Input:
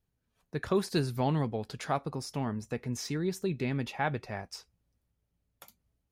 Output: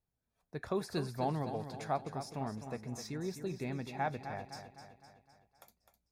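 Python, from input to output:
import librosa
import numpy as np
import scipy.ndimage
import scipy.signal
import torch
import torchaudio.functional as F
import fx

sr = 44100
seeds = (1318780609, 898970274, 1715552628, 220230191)

p1 = fx.peak_eq(x, sr, hz=720.0, db=6.5, octaves=0.73)
p2 = fx.notch(p1, sr, hz=3000.0, q=6.5)
p3 = p2 + fx.echo_feedback(p2, sr, ms=256, feedback_pct=52, wet_db=-9.5, dry=0)
y = F.gain(torch.from_numpy(p3), -8.0).numpy()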